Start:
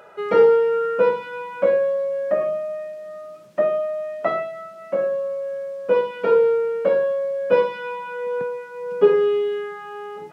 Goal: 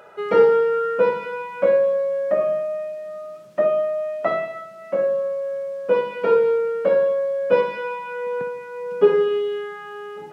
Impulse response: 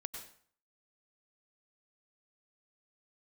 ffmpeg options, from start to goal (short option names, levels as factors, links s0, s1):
-filter_complex "[0:a]asplit=2[s0][s1];[1:a]atrim=start_sample=2205,adelay=60[s2];[s1][s2]afir=irnorm=-1:irlink=0,volume=0.376[s3];[s0][s3]amix=inputs=2:normalize=0"